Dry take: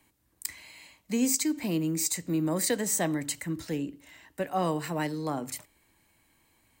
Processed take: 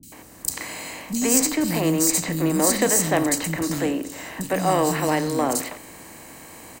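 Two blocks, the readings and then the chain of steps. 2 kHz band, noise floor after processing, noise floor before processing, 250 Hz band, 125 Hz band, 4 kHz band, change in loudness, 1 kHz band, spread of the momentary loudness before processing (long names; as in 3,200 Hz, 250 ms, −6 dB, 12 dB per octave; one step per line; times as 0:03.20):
+10.0 dB, −45 dBFS, −70 dBFS, +7.0 dB, +7.0 dB, +8.0 dB, +8.0 dB, +10.0 dB, 13 LU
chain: compressor on every frequency bin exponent 0.6
harmonic generator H 6 −30 dB, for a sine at −11.5 dBFS
three-band delay without the direct sound lows, highs, mids 30/120 ms, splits 240/3,800 Hz
level +6.5 dB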